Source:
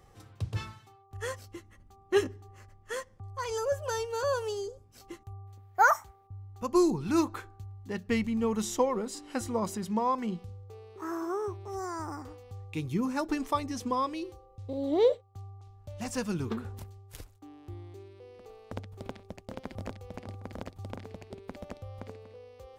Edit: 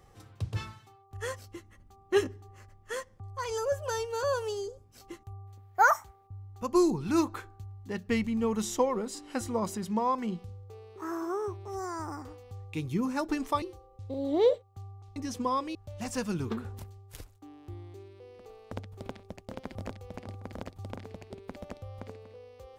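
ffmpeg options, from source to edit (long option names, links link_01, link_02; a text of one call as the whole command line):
ffmpeg -i in.wav -filter_complex "[0:a]asplit=4[link_01][link_02][link_03][link_04];[link_01]atrim=end=13.622[link_05];[link_02]atrim=start=14.208:end=15.752[link_06];[link_03]atrim=start=13.618:end=14.212[link_07];[link_04]atrim=start=15.748[link_08];[link_05][link_06]acrossfade=duration=0.004:curve1=hsin:curve2=hsin[link_09];[link_09][link_07]acrossfade=duration=0.004:curve1=hsin:curve2=hsin[link_10];[link_10][link_08]acrossfade=duration=0.004:curve1=hsin:curve2=hsin" out.wav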